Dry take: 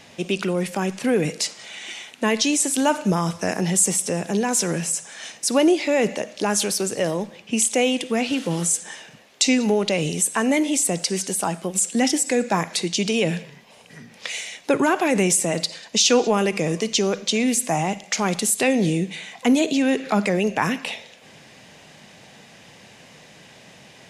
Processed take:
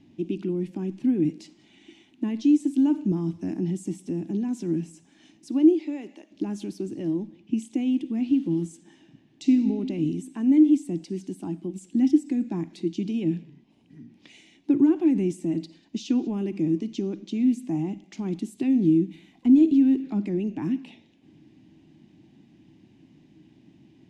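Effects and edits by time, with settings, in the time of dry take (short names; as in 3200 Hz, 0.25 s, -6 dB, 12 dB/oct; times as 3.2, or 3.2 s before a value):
5.48–6.3 HPF 260 Hz -> 760 Hz
8.9–9.53 reverb throw, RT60 2.1 s, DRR 5.5 dB
18.72–20.01 CVSD 64 kbps
whole clip: EQ curve 210 Hz 0 dB, 320 Hz +11 dB, 480 Hz -21 dB, 860 Hz -15 dB, 1300 Hz -23 dB, 3000 Hz -16 dB, 10000 Hz -27 dB; gain -4 dB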